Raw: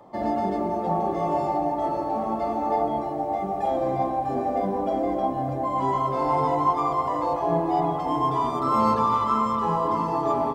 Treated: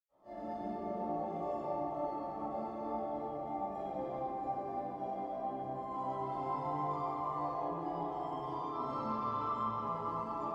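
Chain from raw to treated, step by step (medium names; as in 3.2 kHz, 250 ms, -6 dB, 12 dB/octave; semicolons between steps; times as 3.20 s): 4.47–5.20 s: bass shelf 330 Hz -9 dB; 8.37–9.70 s: low-pass 6.6 kHz 24 dB/octave; reverberation RT60 4.2 s, pre-delay 80 ms, DRR -60 dB; trim -1.5 dB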